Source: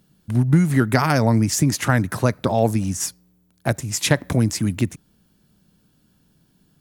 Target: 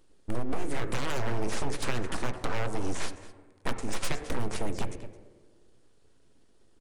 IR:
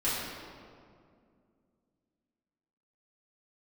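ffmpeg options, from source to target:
-filter_complex "[0:a]acompressor=threshold=0.0891:ratio=5,asplit=2[s0][s1];[s1]adelay=215.7,volume=0.178,highshelf=f=4000:g=-4.85[s2];[s0][s2]amix=inputs=2:normalize=0,aeval=exprs='abs(val(0))':c=same,asplit=2[s3][s4];[1:a]atrim=start_sample=2205,asetrate=79380,aresample=44100,lowpass=2800[s5];[s4][s5]afir=irnorm=-1:irlink=0,volume=0.211[s6];[s3][s6]amix=inputs=2:normalize=0,aresample=22050,aresample=44100,aeval=exprs='0.168*(abs(mod(val(0)/0.168+3,4)-2)-1)':c=same,volume=0.708"

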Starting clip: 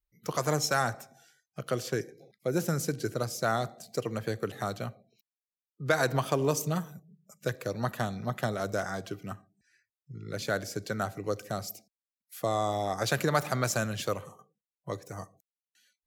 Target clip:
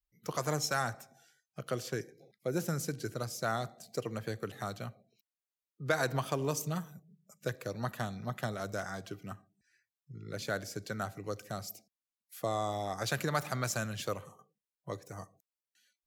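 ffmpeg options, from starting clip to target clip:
-af "adynamicequalizer=threshold=0.00794:dfrequency=450:dqfactor=0.8:tfrequency=450:tqfactor=0.8:attack=5:release=100:ratio=0.375:range=2:mode=cutabove:tftype=bell,volume=0.631"

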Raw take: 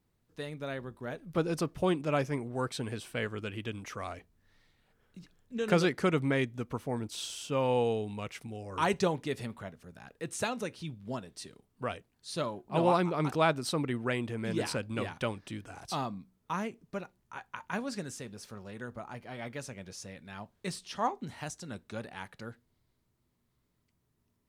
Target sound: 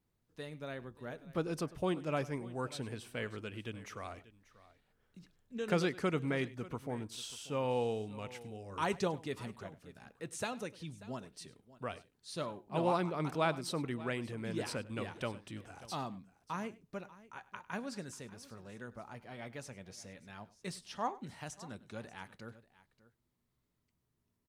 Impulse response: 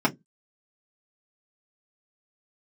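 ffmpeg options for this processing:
-af "aecho=1:1:100|588:0.1|0.119,volume=0.531"

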